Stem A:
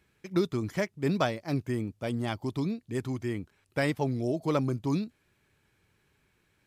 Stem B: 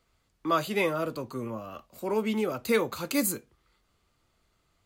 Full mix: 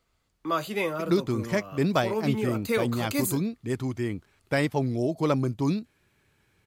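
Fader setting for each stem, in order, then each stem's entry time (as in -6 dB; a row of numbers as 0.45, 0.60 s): +3.0, -1.5 dB; 0.75, 0.00 s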